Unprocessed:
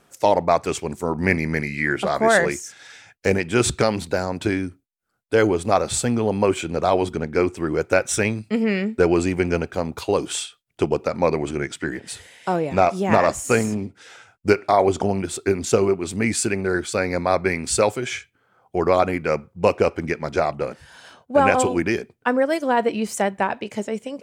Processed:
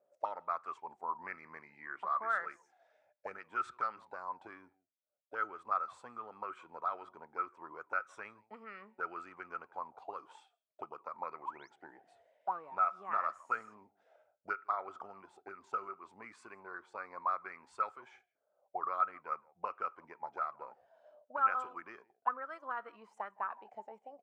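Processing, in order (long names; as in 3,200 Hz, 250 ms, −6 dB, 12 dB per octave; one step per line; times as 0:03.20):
sound drawn into the spectrogram rise, 0:11.45–0:11.70, 750–6,800 Hz −31 dBFS
slap from a distant wall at 28 metres, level −26 dB
envelope filter 580–1,300 Hz, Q 18, up, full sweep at −16 dBFS
level +1 dB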